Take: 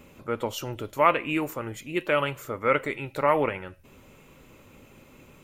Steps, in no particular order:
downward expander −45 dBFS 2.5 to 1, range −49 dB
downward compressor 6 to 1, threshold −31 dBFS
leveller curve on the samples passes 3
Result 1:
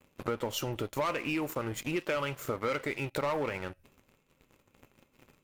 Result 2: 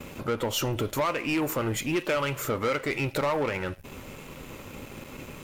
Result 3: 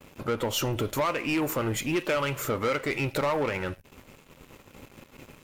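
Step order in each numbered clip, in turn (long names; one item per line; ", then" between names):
leveller curve on the samples, then downward expander, then downward compressor
downward compressor, then leveller curve on the samples, then downward expander
downward expander, then downward compressor, then leveller curve on the samples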